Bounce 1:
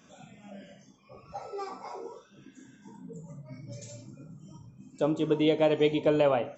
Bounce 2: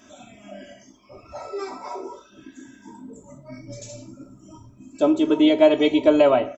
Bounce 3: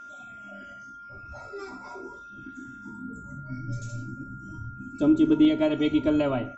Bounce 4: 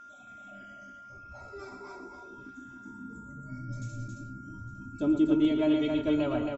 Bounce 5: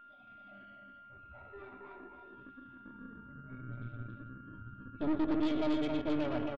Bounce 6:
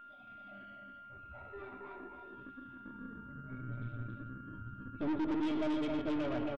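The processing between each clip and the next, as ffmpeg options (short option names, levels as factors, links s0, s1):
-af "aecho=1:1:3.1:0.97,volume=1.78"
-af "aeval=exprs='val(0)+0.0224*sin(2*PI*1400*n/s)':c=same,asubboost=boost=11.5:cutoff=200,volume=0.398"
-af "aecho=1:1:114|272|858:0.355|0.631|0.112,volume=0.501"
-af "aresample=8000,asoftclip=type=tanh:threshold=0.0422,aresample=44100,aeval=exprs='0.0473*(cos(1*acos(clip(val(0)/0.0473,-1,1)))-cos(1*PI/2))+0.0133*(cos(2*acos(clip(val(0)/0.0473,-1,1)))-cos(2*PI/2))+0.0106*(cos(3*acos(clip(val(0)/0.0473,-1,1)))-cos(3*PI/2))+0.0015*(cos(5*acos(clip(val(0)/0.0473,-1,1)))-cos(5*PI/2))':c=same"
-af "asoftclip=type=tanh:threshold=0.0266,volume=1.33"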